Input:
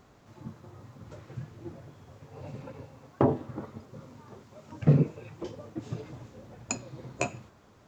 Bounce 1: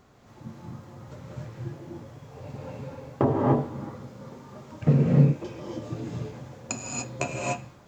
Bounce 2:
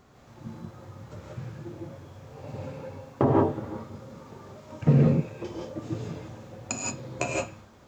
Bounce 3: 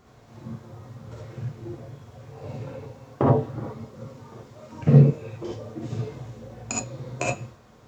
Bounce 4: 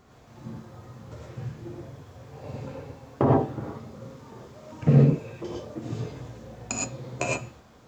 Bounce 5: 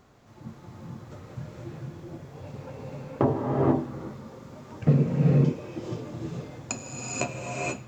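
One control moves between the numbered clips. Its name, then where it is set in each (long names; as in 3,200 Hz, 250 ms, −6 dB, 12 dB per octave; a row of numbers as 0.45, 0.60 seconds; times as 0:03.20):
reverb whose tail is shaped and stops, gate: 320, 200, 90, 140, 510 milliseconds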